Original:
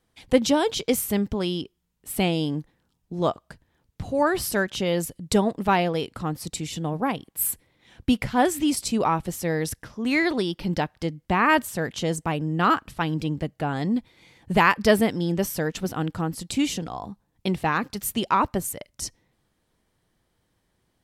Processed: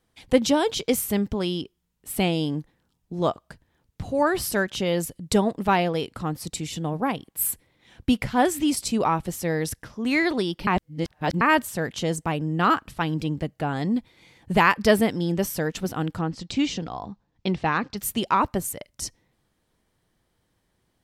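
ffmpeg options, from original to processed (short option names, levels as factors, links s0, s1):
-filter_complex "[0:a]asettb=1/sr,asplit=3[s0][s1][s2];[s0]atrim=end=16.194[s3];[s1]atrim=start=16.19:end=17.98,asetpts=PTS-STARTPTS,afade=t=in:d=0.004:c=qsin,afade=t=out:st=1.786:d=0.004:c=qsin,lowpass=f=6100:w=0.5412,lowpass=f=6100:w=1.3066[s4];[s2]atrim=start=17.976[s5];[s3][s4]acrossfade=d=0.004:c1=hsin:c2=qsin[s6];[s6][s5]acrossfade=d=0.004:c1=qsin:c2=hsin,asplit=3[s7][s8][s9];[s7]atrim=end=10.672[s10];[s8]atrim=start=10.668:end=11.412,asetpts=PTS-STARTPTS,areverse[s11];[s9]atrim=start=11.408[s12];[s10][s11]acrossfade=d=0.004:c1=hsin:c2=hsin[s13];[s13][s12]acrossfade=d=0.004:c1=hsin:c2=hsin"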